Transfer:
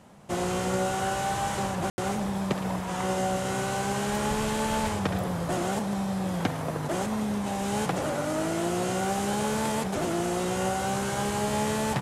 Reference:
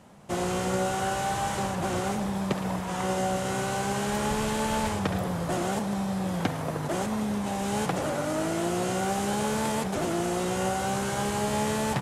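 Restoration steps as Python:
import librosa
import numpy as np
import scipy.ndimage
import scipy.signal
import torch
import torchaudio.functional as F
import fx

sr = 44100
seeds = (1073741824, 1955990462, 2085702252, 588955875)

y = fx.fix_ambience(x, sr, seeds[0], print_start_s=0.0, print_end_s=0.5, start_s=1.9, end_s=1.98)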